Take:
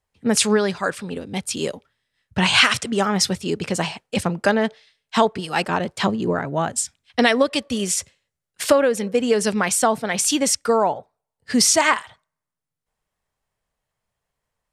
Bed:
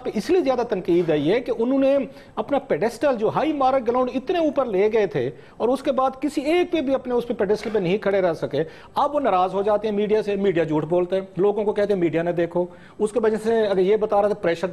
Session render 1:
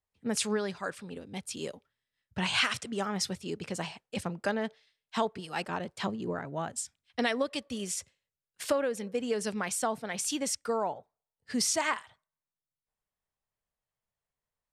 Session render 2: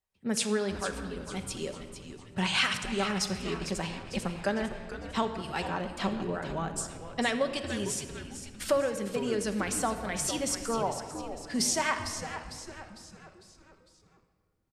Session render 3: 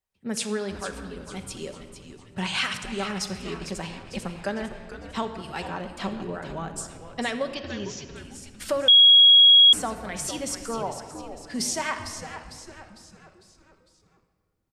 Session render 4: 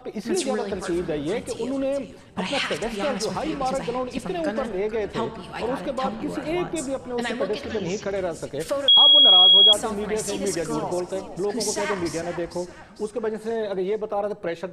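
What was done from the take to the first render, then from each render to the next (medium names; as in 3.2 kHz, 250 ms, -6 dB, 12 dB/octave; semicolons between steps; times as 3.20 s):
trim -12.5 dB
frequency-shifting echo 452 ms, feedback 47%, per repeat -150 Hz, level -10 dB; simulated room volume 3700 m³, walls mixed, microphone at 1.1 m
7.54–8.16 s: steep low-pass 6.6 kHz 72 dB/octave; 8.88–9.73 s: bleep 3.31 kHz -10 dBFS
add bed -7 dB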